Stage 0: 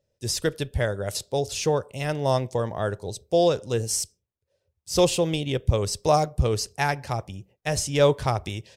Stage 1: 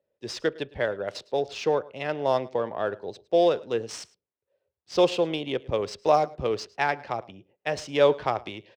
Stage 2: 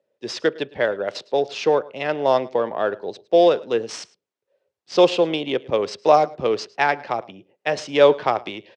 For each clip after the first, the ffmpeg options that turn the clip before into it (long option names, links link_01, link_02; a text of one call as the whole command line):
ffmpeg -i in.wav -filter_complex "[0:a]adynamicsmooth=sensitivity=5.5:basefreq=3200,acrossover=split=220 4600:gain=0.112 1 0.126[link_01][link_02][link_03];[link_01][link_02][link_03]amix=inputs=3:normalize=0,aecho=1:1:107:0.075" out.wav
ffmpeg -i in.wav -af "highpass=170,lowpass=6800,volume=6dB" out.wav